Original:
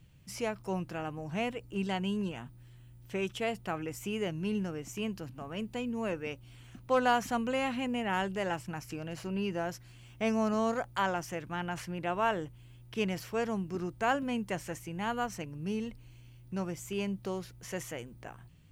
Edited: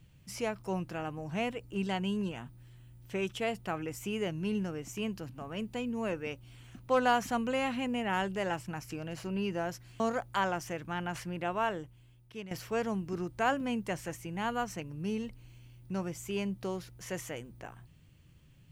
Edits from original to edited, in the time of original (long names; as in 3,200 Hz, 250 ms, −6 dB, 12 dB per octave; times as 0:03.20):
0:10.00–0:10.62: remove
0:11.96–0:13.13: fade out, to −14 dB